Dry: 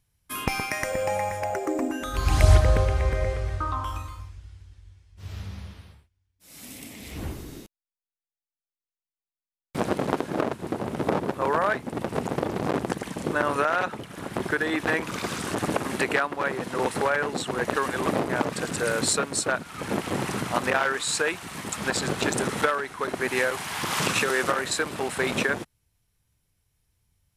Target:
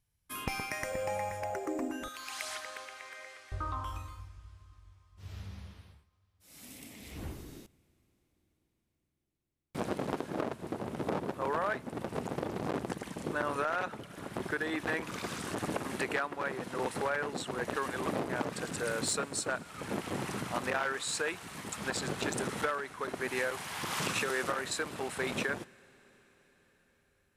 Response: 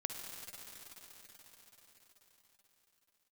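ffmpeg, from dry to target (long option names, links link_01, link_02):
-filter_complex "[0:a]asettb=1/sr,asplit=3[link_01][link_02][link_03];[link_01]atrim=end=2.084[link_04];[link_02]atrim=start=2.08:end=3.52,asetpts=PTS-STARTPTS,afade=type=in:duration=0.004:curve=qsin,afade=type=out:start_time=1.436:duration=0.004:curve=qsin,highpass=1400[link_05];[link_03]atrim=start=3.516[link_06];[link_04][link_05]acrossfade=duration=0.004:curve1=hsin:curve2=qsin[link_07];[link_07][link_06]acrossfade=duration=0.004:curve1=qsin:curve2=hsin,asoftclip=type=tanh:threshold=-11.5dB,asplit=2[link_08][link_09];[1:a]atrim=start_sample=2205[link_10];[link_09][link_10]afir=irnorm=-1:irlink=0,volume=-19.5dB[link_11];[link_08][link_11]amix=inputs=2:normalize=0,volume=-8.5dB"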